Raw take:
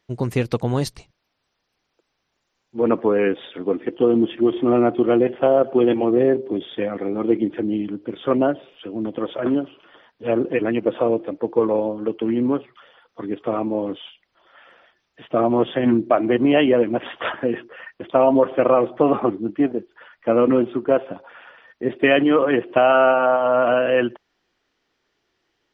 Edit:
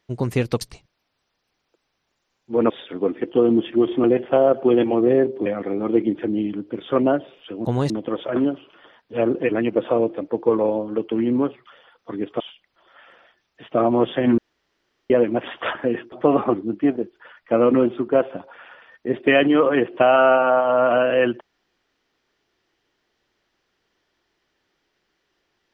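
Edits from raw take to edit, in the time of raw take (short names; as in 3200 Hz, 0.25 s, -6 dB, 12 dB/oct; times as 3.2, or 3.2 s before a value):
0.61–0.86 move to 9
2.95–3.35 cut
4.69–5.14 cut
6.56–6.81 cut
13.5–13.99 cut
15.97–16.69 room tone
17.71–18.88 cut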